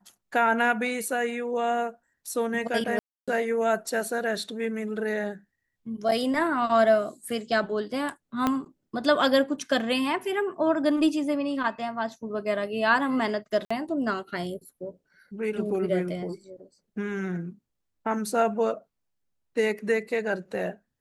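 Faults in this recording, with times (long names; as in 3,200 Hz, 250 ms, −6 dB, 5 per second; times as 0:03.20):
0:02.99–0:03.28: drop-out 286 ms
0:08.47: click −11 dBFS
0:13.65–0:13.71: drop-out 55 ms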